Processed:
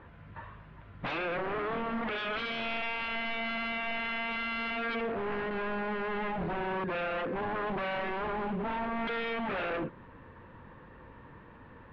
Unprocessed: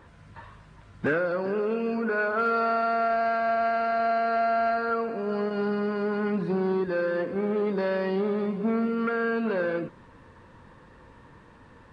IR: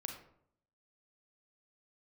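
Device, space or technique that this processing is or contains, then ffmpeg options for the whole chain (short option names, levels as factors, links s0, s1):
synthesiser wavefolder: -af "aeval=exprs='0.0376*(abs(mod(val(0)/0.0376+3,4)-2)-1)':c=same,lowpass=f=3100:w=0.5412,lowpass=f=3100:w=1.3066"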